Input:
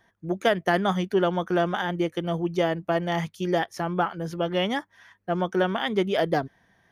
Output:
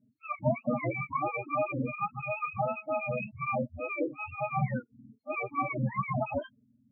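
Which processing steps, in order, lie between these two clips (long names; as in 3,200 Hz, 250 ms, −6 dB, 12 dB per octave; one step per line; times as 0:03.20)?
frequency axis turned over on the octave scale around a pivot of 650 Hz
0:02.71–0:03.31: hum removal 213.2 Hz, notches 10
spectral peaks only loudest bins 8
level −3.5 dB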